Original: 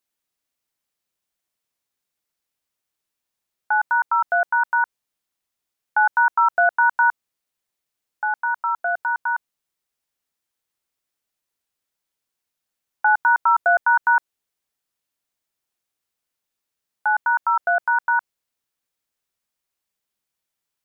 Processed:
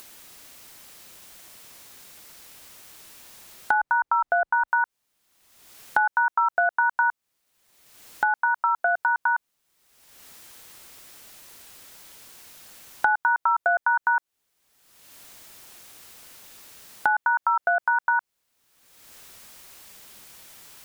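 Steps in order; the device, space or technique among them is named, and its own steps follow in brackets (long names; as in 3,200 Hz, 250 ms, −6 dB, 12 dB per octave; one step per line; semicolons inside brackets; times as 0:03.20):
0:03.74–0:04.68: spectral tilt −2.5 dB per octave
upward and downward compression (upward compression, threshold −33 dBFS; downward compressor 6 to 1, threshold −27 dBFS, peak gain reduction 13 dB)
level +7.5 dB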